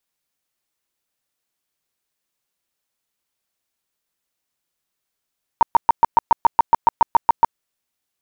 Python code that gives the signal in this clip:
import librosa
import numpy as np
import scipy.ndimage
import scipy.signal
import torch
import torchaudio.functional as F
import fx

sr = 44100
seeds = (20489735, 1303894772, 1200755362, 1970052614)

y = fx.tone_burst(sr, hz=928.0, cycles=16, every_s=0.14, bursts=14, level_db=-7.0)